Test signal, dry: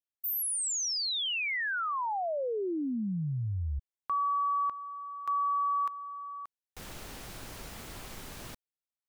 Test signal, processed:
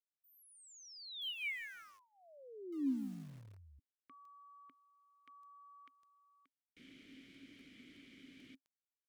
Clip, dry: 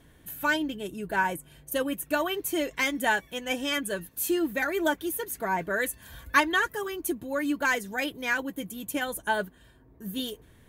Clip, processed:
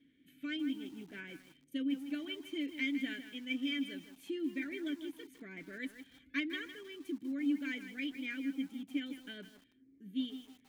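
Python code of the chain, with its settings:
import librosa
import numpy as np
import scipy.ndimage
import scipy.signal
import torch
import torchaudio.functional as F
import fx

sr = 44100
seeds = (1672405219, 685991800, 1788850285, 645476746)

y = fx.vowel_filter(x, sr, vowel='i')
y = fx.echo_crushed(y, sr, ms=157, feedback_pct=35, bits=9, wet_db=-10.0)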